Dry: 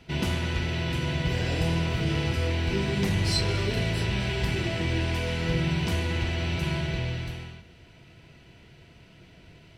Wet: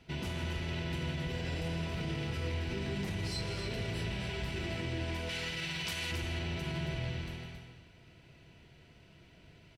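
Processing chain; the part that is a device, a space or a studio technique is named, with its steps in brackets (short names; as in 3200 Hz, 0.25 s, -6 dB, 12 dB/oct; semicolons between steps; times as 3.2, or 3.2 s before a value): clipper into limiter (hard clip -15.5 dBFS, distortion -51 dB; limiter -22 dBFS, peak gain reduction 6.5 dB); 5.29–6.12 tilt shelf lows -9 dB; loudspeakers at several distances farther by 54 m -11 dB, 93 m -8 dB; gain -7 dB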